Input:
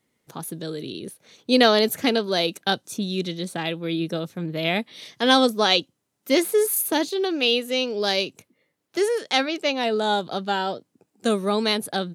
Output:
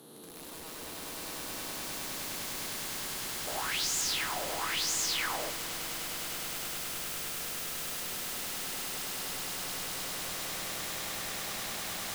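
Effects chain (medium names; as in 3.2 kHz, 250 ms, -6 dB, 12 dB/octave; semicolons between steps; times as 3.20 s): spectral blur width 951 ms; high-pass 200 Hz 12 dB/octave; treble shelf 7.2 kHz +9 dB; peak limiter -25 dBFS, peak gain reduction 12 dB; saturation -27 dBFS, distortion -20 dB; flange 1.1 Hz, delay 7 ms, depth 6.9 ms, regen -45%; integer overflow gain 41 dB; echo with a slow build-up 102 ms, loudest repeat 8, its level -4 dB; 3.47–5.50 s: sweeping bell 1 Hz 570–7100 Hz +16 dB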